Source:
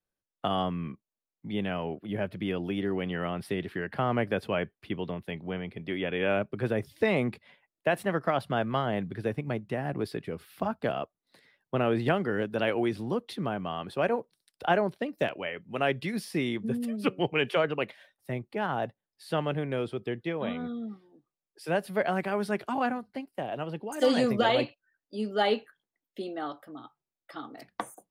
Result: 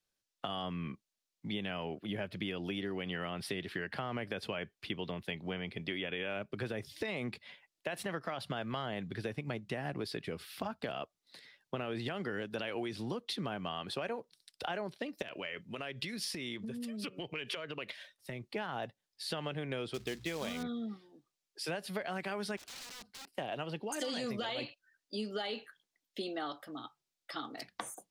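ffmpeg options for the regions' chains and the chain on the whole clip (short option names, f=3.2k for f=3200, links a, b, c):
-filter_complex "[0:a]asettb=1/sr,asplit=3[a][b][c];[a]atrim=end=15.224[d];[b]atrim=start=15.22:end=18.48,asetpts=PTS-STARTPTS,afade=t=in:d=0.004:c=qsin,afade=t=out:st=3.256:d=0.004:c=qsin,bandreject=f=790:w=6.4,acompressor=threshold=-36dB:ratio=16:attack=3.2:release=140:knee=1:detection=peak[e];[c]atrim=start=18.476[f];[d][e]acrossfade=d=0.004:c1=hsin:c2=qsin[g];[g][f]acrossfade=d=0.004:c1=qsin:c2=hsin,asettb=1/sr,asplit=3[h][i][j];[h]atrim=end=19.944[k];[i]atrim=start=19.94:end=20.63,asetpts=PTS-STARTPTS,afade=t=in:d=0.004:c=qsin,afade=t=out:st=0.686:d=0.004:c=qsin,bandreject=f=60:t=h:w=6,bandreject=f=120:t=h:w=6,aeval=exprs='val(0)+0.00178*(sin(2*PI*60*n/s)+sin(2*PI*2*60*n/s)/2+sin(2*PI*3*60*n/s)/3+sin(2*PI*4*60*n/s)/4+sin(2*PI*5*60*n/s)/5)':c=same,acrusher=bits=4:mode=log:mix=0:aa=0.000001[l];[j]atrim=start=20.626[m];[k][l]acrossfade=d=0.004:c1=hsin:c2=qsin[n];[n][m]acrossfade=d=0.004:c1=qsin:c2=hsin,asettb=1/sr,asplit=3[o][p][q];[o]atrim=end=22.574[r];[p]atrim=start=22.57:end=23.32,asetpts=PTS-STARTPTS,afade=t=in:d=0.004:c=qsin,afade=t=out:st=0.746:d=0.004:c=qsin,acompressor=threshold=-42dB:ratio=12:attack=3.2:release=140:knee=1:detection=peak,aeval=exprs='(mod(251*val(0)+1,2)-1)/251':c=same[s];[q]atrim=start=23.316[t];[r][s]acrossfade=d=0.004:c1=hsin:c2=qsin[u];[u][t]acrossfade=d=0.004:c1=qsin:c2=hsin,equalizer=f=4.8k:w=0.5:g=11,alimiter=limit=-18.5dB:level=0:latency=1:release=56,acompressor=threshold=-33dB:ratio=6,volume=-1.5dB"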